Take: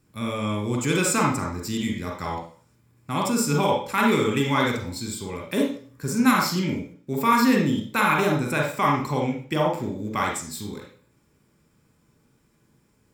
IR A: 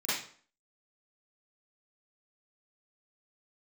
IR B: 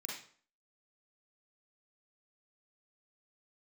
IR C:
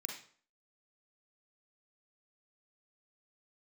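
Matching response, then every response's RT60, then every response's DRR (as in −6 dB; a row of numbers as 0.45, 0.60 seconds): C; 0.50, 0.50, 0.50 seconds; −13.0, −3.5, 1.0 decibels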